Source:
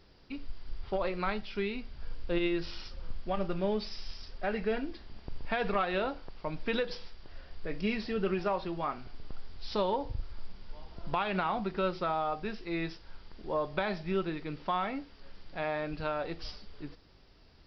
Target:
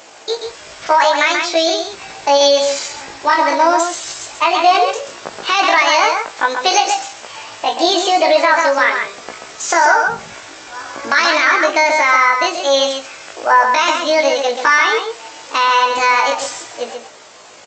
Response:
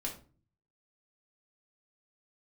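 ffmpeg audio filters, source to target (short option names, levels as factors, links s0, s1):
-filter_complex "[0:a]highpass=340,asplit=2[s0][s1];[s1]acompressor=threshold=0.00708:ratio=6,volume=0.944[s2];[s0][s2]amix=inputs=2:normalize=0,asetrate=72056,aresample=44100,atempo=0.612027,asplit=2[s3][s4];[s4]adelay=18,volume=0.501[s5];[s3][s5]amix=inputs=2:normalize=0,asplit=2[s6][s7];[s7]adelay=134.1,volume=0.501,highshelf=f=4000:g=-3.02[s8];[s6][s8]amix=inputs=2:normalize=0,aresample=16000,aresample=44100,alimiter=level_in=10:limit=0.891:release=50:level=0:latency=1,volume=0.891"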